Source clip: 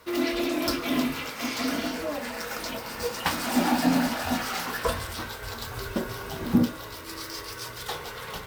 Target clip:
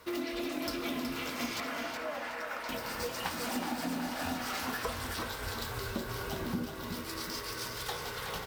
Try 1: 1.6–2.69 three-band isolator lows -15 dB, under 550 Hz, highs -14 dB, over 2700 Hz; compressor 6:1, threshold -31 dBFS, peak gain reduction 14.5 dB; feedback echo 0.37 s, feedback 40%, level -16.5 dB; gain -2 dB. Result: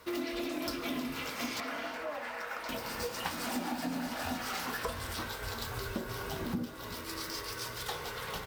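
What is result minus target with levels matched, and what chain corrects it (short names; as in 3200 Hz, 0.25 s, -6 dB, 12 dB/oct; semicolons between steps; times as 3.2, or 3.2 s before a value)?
echo-to-direct -9.5 dB
1.6–2.69 three-band isolator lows -15 dB, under 550 Hz, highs -14 dB, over 2700 Hz; compressor 6:1, threshold -31 dBFS, peak gain reduction 14.5 dB; feedback echo 0.37 s, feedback 40%, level -7 dB; gain -2 dB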